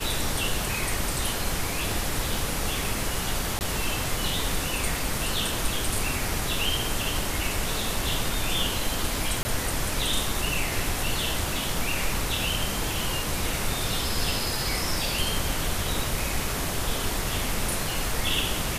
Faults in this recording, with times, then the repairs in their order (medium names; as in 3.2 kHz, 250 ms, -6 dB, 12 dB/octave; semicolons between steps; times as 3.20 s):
3.59–3.61 s: dropout 19 ms
9.43–9.45 s: dropout 20 ms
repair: interpolate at 3.59 s, 19 ms; interpolate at 9.43 s, 20 ms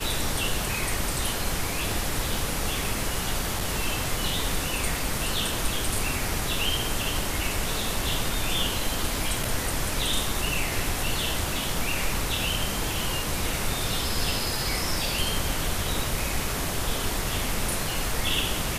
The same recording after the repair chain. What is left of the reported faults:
nothing left